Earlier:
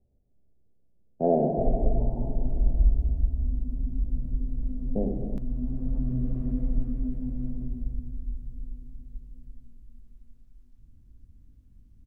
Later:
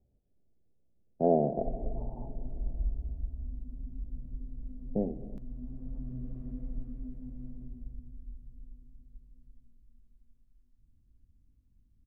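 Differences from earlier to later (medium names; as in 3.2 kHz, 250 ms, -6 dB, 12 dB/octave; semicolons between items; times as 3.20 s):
speech: send -10.5 dB; background -11.5 dB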